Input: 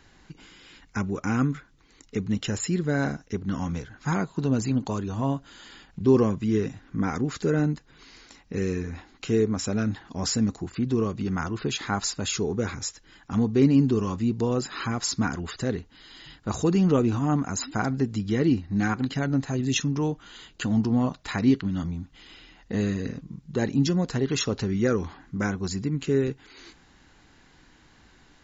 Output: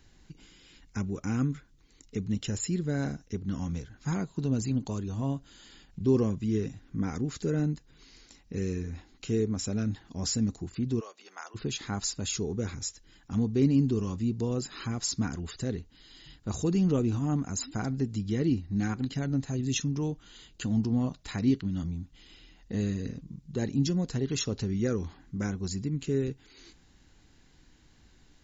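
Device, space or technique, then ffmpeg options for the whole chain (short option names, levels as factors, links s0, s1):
smiley-face EQ: -filter_complex "[0:a]asplit=3[s0][s1][s2];[s0]afade=t=out:st=10.99:d=0.02[s3];[s1]highpass=f=610:w=0.5412,highpass=f=610:w=1.3066,afade=t=in:st=10.99:d=0.02,afade=t=out:st=11.54:d=0.02[s4];[s2]afade=t=in:st=11.54:d=0.02[s5];[s3][s4][s5]amix=inputs=3:normalize=0,lowshelf=f=99:g=6.5,equalizer=f=1200:t=o:w=2:g=-6.5,highshelf=f=6800:g=5.5,volume=0.562"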